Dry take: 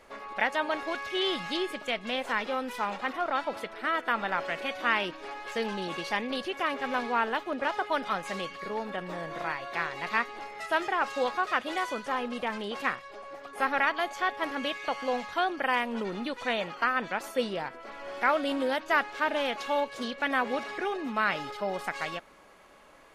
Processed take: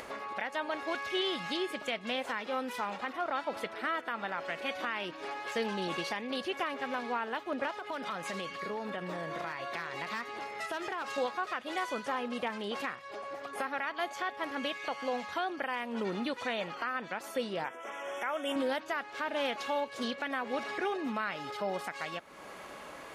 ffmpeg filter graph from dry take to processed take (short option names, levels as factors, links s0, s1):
-filter_complex "[0:a]asettb=1/sr,asplit=3[s0][s1][s2];[s0]atrim=end=7.714[s3];[s1]atrim=start=7.71:end=11.18,asetpts=PTS-STARTPTS,afade=t=in:d=0.004:c=qsin,afade=t=out:st=3.466:d=0.004:c=qsin,asoftclip=type=hard:threshold=0.0891,bandreject=f=790:w=15,acompressor=threshold=0.0224:ratio=6:attack=3.2:release=140:knee=1:detection=peak[s4];[s2]atrim=start=11.176[s5];[s3][s4]acrossfade=d=0.004:c1=hsin:c2=qsin[s6];[s6][s5]acrossfade=d=0.004:c1=qsin:c2=hsin,asettb=1/sr,asplit=3[s7][s8][s9];[s7]atrim=end=17.644[s10];[s8]atrim=start=17.64:end=18.56,asetpts=PTS-STARTPTS,afade=t=in:d=0.004:c=qsin,afade=t=out:st=0.916:d=0.004:c=qsin,asuperstop=centerf=4400:order=12:qfactor=2.3,bass=f=250:g=-11,treble=f=4000:g=6[s11];[s9]atrim=start=18.556[s12];[s10][s11]acrossfade=d=0.004:c1=hsin:c2=qsin[s13];[s13][s12]acrossfade=d=0.004:c1=qsin:c2=hsin,highpass=69,alimiter=limit=0.0708:level=0:latency=1:release=306,acompressor=mode=upward:threshold=0.0158:ratio=2.5"